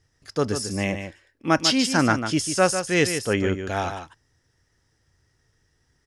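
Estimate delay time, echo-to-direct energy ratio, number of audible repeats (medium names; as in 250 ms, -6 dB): 147 ms, -8.5 dB, 1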